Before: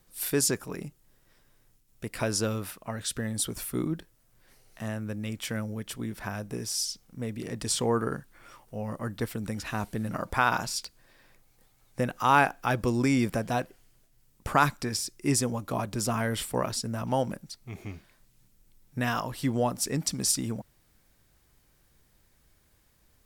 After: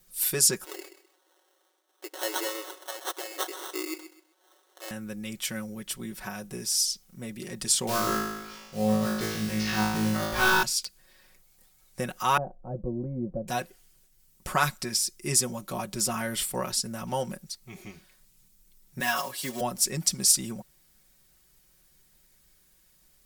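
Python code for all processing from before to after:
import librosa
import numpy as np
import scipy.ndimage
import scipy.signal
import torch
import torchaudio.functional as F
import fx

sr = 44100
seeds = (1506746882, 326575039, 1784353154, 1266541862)

y = fx.chain(x, sr, fx.sample_hold(seeds[0], rate_hz=2400.0, jitter_pct=0),
    fx.brickwall_highpass(low_hz=280.0),
    fx.echo_feedback(ms=128, feedback_pct=27, wet_db=-12), at=(0.64, 4.91))
y = fx.chain(y, sr, fx.cvsd(bps=32000),
    fx.quant_float(bits=2),
    fx.room_flutter(wall_m=3.2, rt60_s=1.1), at=(7.87, 10.63))
y = fx.chain(y, sr, fx.ladder_lowpass(hz=650.0, resonance_pct=50),
    fx.tilt_eq(slope=-3.0),
    fx.notch(hz=410.0, q=5.2), at=(12.37, 13.48))
y = fx.chain(y, sr, fx.block_float(bits=5),
    fx.highpass(hz=290.0, slope=12),
    fx.comb(ms=7.2, depth=0.86), at=(19.0, 19.61))
y = fx.high_shelf(y, sr, hz=2900.0, db=10.0)
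y = y + 0.76 * np.pad(y, (int(5.4 * sr / 1000.0), 0))[:len(y)]
y = y * 10.0 ** (-5.0 / 20.0)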